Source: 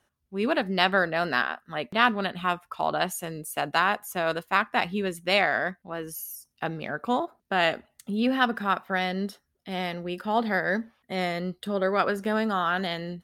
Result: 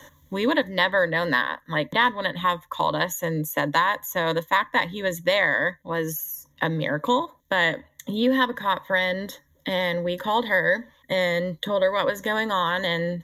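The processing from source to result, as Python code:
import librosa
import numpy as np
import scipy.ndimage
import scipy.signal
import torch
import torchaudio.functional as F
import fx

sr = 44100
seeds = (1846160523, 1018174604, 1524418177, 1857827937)

y = fx.ripple_eq(x, sr, per_octave=1.1, db=18)
y = fx.band_squash(y, sr, depth_pct=70)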